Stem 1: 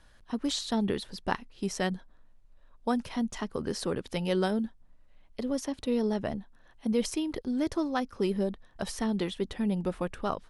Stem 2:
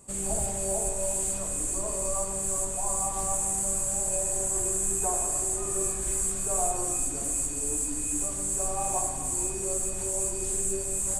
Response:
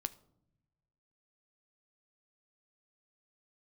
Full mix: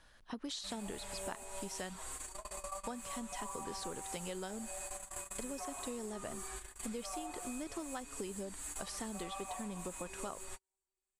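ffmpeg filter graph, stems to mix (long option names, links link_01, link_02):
-filter_complex "[0:a]volume=-0.5dB,asplit=2[link_01][link_02];[1:a]equalizer=frequency=125:width_type=o:width=1:gain=-9,equalizer=frequency=250:width_type=o:width=1:gain=-5,equalizer=frequency=500:width_type=o:width=1:gain=-7,equalizer=frequency=1000:width_type=o:width=1:gain=5,equalizer=frequency=2000:width_type=o:width=1:gain=4,equalizer=frequency=4000:width_type=o:width=1:gain=7,equalizer=frequency=8000:width_type=o:width=1:gain=-12,asplit=2[link_03][link_04];[link_04]adelay=6.3,afreqshift=-0.46[link_05];[link_03][link_05]amix=inputs=2:normalize=1,adelay=550,volume=0.5dB[link_06];[link_02]apad=whole_len=518440[link_07];[link_06][link_07]sidechaingate=range=-53dB:threshold=-54dB:ratio=16:detection=peak[link_08];[link_01][link_08]amix=inputs=2:normalize=0,lowshelf=frequency=350:gain=-7,acompressor=threshold=-39dB:ratio=10"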